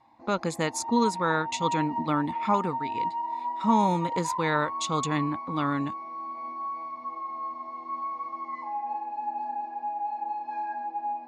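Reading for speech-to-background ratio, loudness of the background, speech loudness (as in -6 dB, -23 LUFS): 4.5 dB, -33.0 LUFS, -28.5 LUFS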